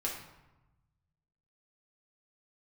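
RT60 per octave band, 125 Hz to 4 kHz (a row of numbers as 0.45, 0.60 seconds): 1.9, 1.3, 1.0, 1.1, 0.85, 0.65 seconds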